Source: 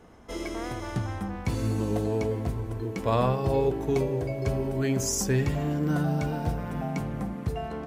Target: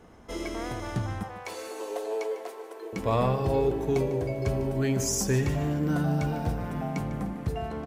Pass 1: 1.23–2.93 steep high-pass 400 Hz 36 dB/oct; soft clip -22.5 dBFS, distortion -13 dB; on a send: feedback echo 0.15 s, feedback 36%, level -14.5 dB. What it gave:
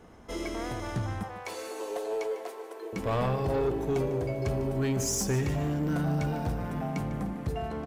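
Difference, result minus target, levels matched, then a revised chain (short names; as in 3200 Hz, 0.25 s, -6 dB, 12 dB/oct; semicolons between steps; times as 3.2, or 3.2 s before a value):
soft clip: distortion +14 dB
1.23–2.93 steep high-pass 400 Hz 36 dB/oct; soft clip -12 dBFS, distortion -27 dB; on a send: feedback echo 0.15 s, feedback 36%, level -14.5 dB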